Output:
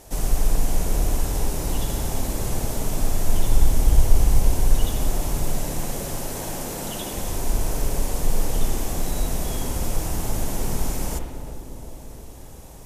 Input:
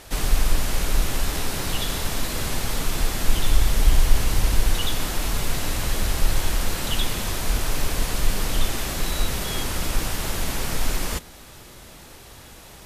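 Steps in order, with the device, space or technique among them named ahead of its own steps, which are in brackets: high-order bell 2.3 kHz -9.5 dB 2.3 oct; 5.51–7.14 s: high-pass 180 Hz 12 dB/octave; dub delay into a spring reverb (filtered feedback delay 356 ms, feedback 66%, low-pass 1.1 kHz, level -9 dB; spring tank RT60 1.1 s, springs 56 ms, chirp 60 ms, DRR 3 dB); trim -1 dB

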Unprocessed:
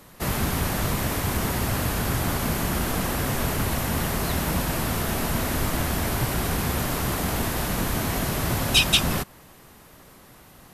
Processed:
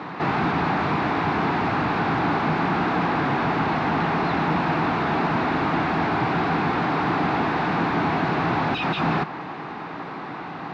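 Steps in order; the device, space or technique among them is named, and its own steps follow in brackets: overdrive pedal into a guitar cabinet (overdrive pedal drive 38 dB, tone 1.8 kHz, clips at -4 dBFS; cabinet simulation 83–3600 Hz, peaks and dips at 160 Hz +8 dB, 300 Hz +7 dB, 560 Hz -8 dB, 810 Hz +5 dB, 1.9 kHz -3 dB, 3.1 kHz -8 dB); trim -8.5 dB

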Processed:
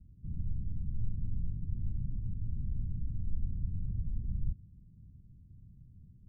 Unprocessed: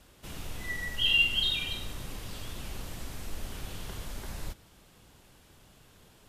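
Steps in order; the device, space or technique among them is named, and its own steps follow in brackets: the neighbour's flat through the wall (low-pass 190 Hz 24 dB/octave; peaking EQ 98 Hz +4 dB 0.87 oct); trim +5 dB

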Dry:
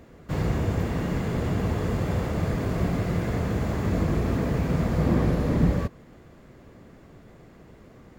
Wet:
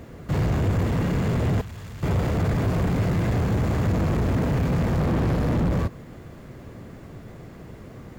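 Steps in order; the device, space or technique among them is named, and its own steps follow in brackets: open-reel tape (saturation -28 dBFS, distortion -8 dB; peaking EQ 110 Hz +5 dB 1.1 oct; white noise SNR 46 dB); 1.61–2.03 s: amplifier tone stack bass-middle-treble 5-5-5; trim +6.5 dB

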